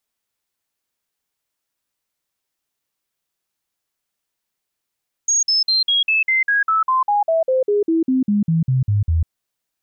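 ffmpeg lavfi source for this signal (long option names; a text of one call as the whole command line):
ffmpeg -f lavfi -i "aevalsrc='0.211*clip(min(mod(t,0.2),0.15-mod(t,0.2))/0.005,0,1)*sin(2*PI*6590*pow(2,-floor(t/0.2)/3)*mod(t,0.2))':duration=4:sample_rate=44100" out.wav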